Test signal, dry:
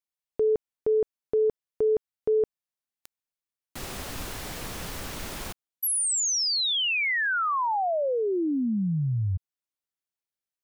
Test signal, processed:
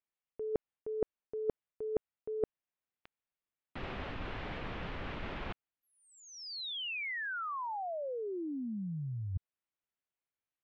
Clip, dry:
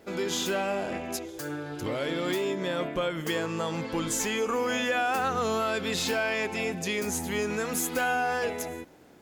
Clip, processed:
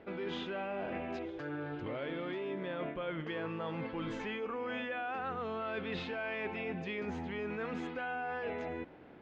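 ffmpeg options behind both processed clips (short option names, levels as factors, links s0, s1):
-af "lowpass=f=3000:w=0.5412,lowpass=f=3000:w=1.3066,areverse,acompressor=threshold=0.01:ratio=6:attack=61:release=143:knee=6:detection=peak,areverse"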